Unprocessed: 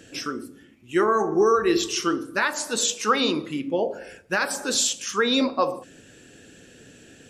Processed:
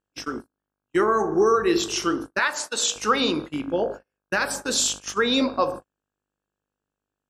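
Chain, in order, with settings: buzz 50 Hz, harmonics 33, -45 dBFS -2 dB/oct; 2.39–2.96 weighting filter A; gate -31 dBFS, range -43 dB

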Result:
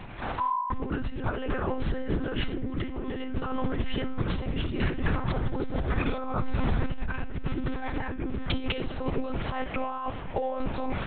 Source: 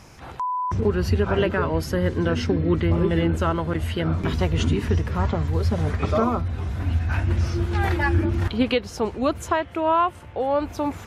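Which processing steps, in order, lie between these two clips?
4.51–7.05 low shelf 100 Hz -4.5 dB; negative-ratio compressor -29 dBFS, ratio -1; reverb RT60 0.40 s, pre-delay 43 ms, DRR 11.5 dB; monotone LPC vocoder at 8 kHz 260 Hz

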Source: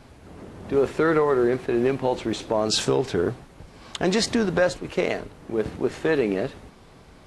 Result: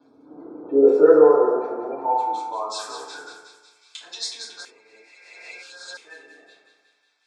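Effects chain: crossover distortion -47 dBFS; bell 1900 Hz -10.5 dB 0.51 oct; notch 2900 Hz, Q 5; spectral gate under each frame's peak -25 dB strong; 1.95–2.95 bell 3800 Hz -6 dB 2.5 oct; thinning echo 0.183 s, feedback 60%, high-pass 520 Hz, level -7.5 dB; FDN reverb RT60 1.1 s, low-frequency decay 1.4×, high-frequency decay 0.35×, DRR -9 dB; high-pass sweep 280 Hz -> 2600 Hz, 0.25–4.02; 4.65–5.97 reverse; gain -9.5 dB

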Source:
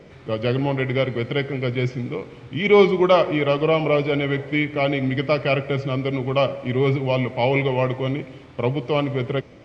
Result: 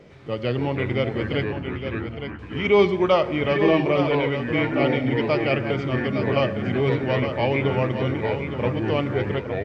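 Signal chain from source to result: 1.44–2.39 Butterworth band-pass 2800 Hz, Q 6.6; on a send: echo 0.862 s -8 dB; on the sum: echoes that change speed 0.214 s, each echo -4 st, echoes 3, each echo -6 dB; gain -3 dB

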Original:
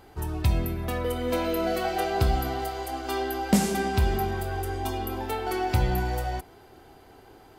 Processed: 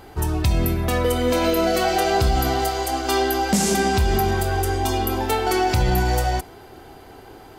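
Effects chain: dynamic EQ 6500 Hz, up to +7 dB, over -53 dBFS, Q 0.98; limiter -19 dBFS, peak gain reduction 9 dB; gain +8.5 dB

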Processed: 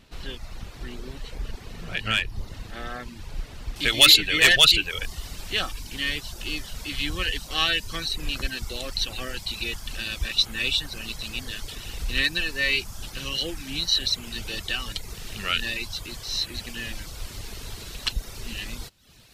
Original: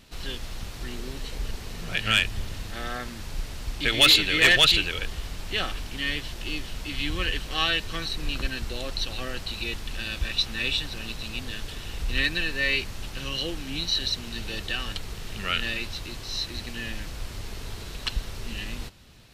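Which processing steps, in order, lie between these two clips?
reverb removal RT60 0.63 s; high shelf 3900 Hz -6.5 dB, from 3.76 s +7.5 dB

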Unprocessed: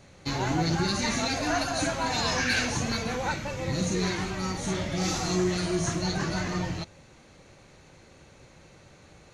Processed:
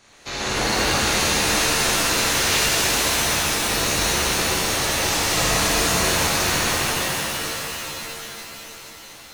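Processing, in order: spectral limiter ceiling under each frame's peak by 21 dB; shimmer reverb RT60 3.8 s, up +7 st, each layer -2 dB, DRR -8 dB; gain -3.5 dB

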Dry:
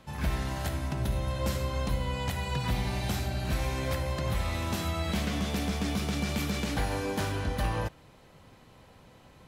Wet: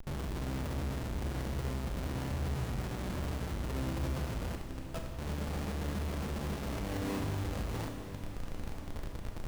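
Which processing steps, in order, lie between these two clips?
LPF 2400 Hz 6 dB/oct; tilt shelf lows +7.5 dB, about 1500 Hz; limiter -26 dBFS, peak gain reduction 13 dB; compressor 1.5:1, threshold -41 dBFS, peak gain reduction 4.5 dB; 4.55–5.19 rippled Chebyshev high-pass 450 Hz, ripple 9 dB; Schmitt trigger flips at -42 dBFS; on a send: diffused feedback echo 0.952 s, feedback 58%, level -11 dB; on the sum: Schroeder reverb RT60 0.9 s, combs from 27 ms, DRR 4.5 dB

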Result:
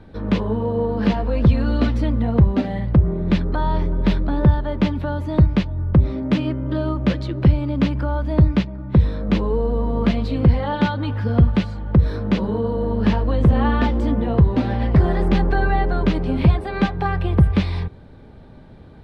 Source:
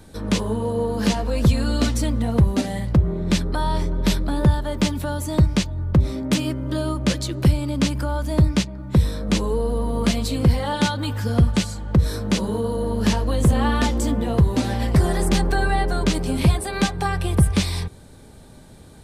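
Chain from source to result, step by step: air absorption 350 m; gain +2.5 dB

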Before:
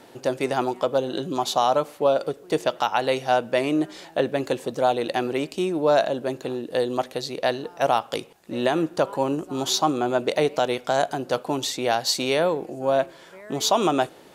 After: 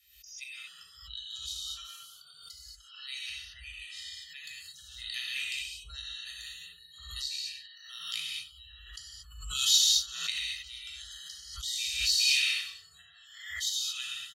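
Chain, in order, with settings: feedback echo 95 ms, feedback 57%, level -13.5 dB; auto swell 0.402 s; bell 110 Hz +14 dB 0.23 oct; frequency shift +45 Hz; spectral noise reduction 29 dB; inverse Chebyshev band-stop 180–910 Hz, stop band 60 dB; tilt -2 dB/oct; comb 1.6 ms, depth 86%; non-linear reverb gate 0.26 s flat, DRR -5.5 dB; backwards sustainer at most 65 dB/s

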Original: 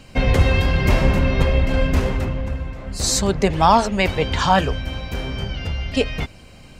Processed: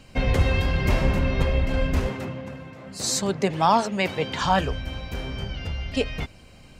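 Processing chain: 2.09–4.42 HPF 120 Hz 24 dB/oct; gain -5 dB

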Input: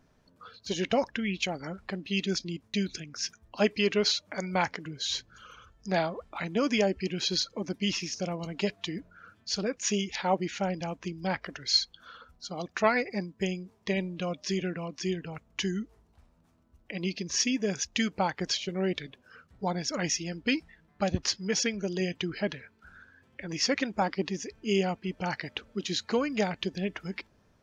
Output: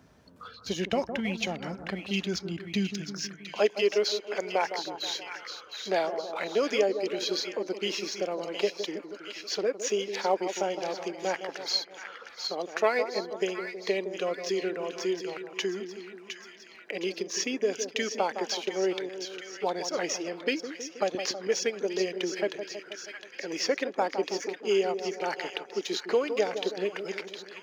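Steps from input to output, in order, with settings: 4.52–5.07 formant sharpening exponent 1.5; in parallel at -5 dB: crossover distortion -41 dBFS; on the sum: high-pass sweep 61 Hz -> 420 Hz, 2.4–3.53; split-band echo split 1300 Hz, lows 0.16 s, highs 0.711 s, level -10 dB; three-band squash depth 40%; gain -5 dB

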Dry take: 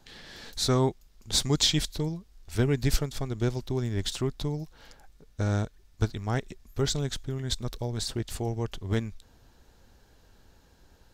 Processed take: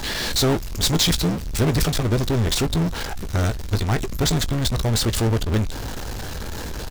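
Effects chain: granular stretch 0.62×, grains 27 ms; power-law curve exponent 0.35; doubler 18 ms -13 dB

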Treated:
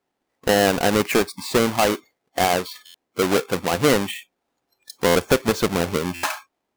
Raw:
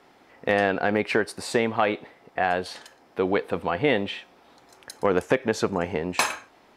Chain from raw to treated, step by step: half-waves squared off; spectral noise reduction 26 dB; stuck buffer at 2.85/5.06/6.14, samples 512, times 7

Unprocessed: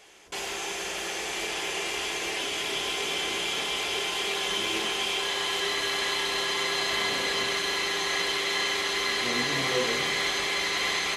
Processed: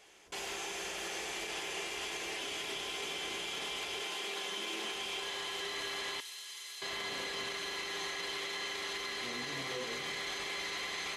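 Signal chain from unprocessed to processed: 4.02–4.94 HPF 170 Hz 24 dB/oct; limiter -23.5 dBFS, peak gain reduction 9 dB; 6.2–6.82 differentiator; gain -6.5 dB

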